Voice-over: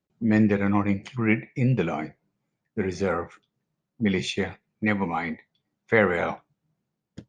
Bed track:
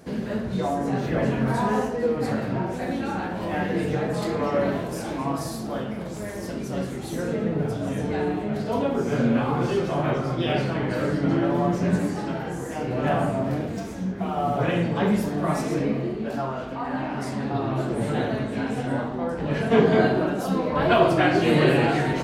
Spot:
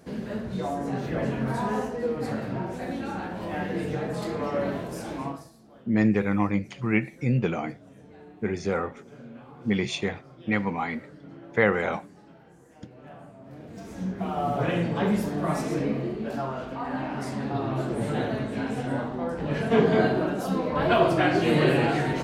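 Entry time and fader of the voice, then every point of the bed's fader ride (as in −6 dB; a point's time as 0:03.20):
5.65 s, −1.5 dB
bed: 0:05.26 −4.5 dB
0:05.52 −23 dB
0:13.39 −23 dB
0:14.02 −2.5 dB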